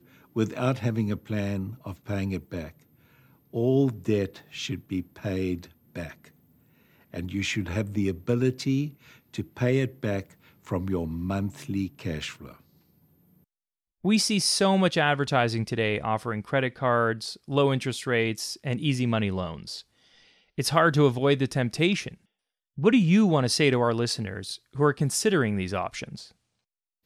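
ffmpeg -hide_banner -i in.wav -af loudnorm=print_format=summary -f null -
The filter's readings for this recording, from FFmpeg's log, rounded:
Input Integrated:    -26.3 LUFS
Input True Peak:      -6.9 dBTP
Input LRA:             8.3 LU
Input Threshold:     -37.4 LUFS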